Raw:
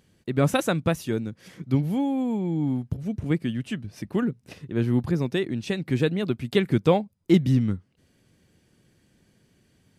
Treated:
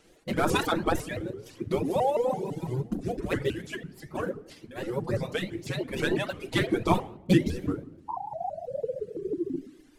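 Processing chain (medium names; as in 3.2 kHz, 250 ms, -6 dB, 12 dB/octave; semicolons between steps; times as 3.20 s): CVSD coder 64 kbps; 8.09–9.55 s: painted sound fall 320–900 Hz -16 dBFS; compression 1.5:1, threshold -24 dBFS, peak gain reduction 4.5 dB; spectral gate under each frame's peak -10 dB weak; 3.66–5.93 s: flange 1.5 Hz, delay 5.4 ms, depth 9.4 ms, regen +38%; reverberation RT60 0.90 s, pre-delay 6 ms, DRR -2.5 dB; reverb removal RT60 1.9 s; tilt shelf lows +5.5 dB, about 700 Hz; vibrato with a chosen wave saw up 6 Hz, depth 250 cents; trim +6 dB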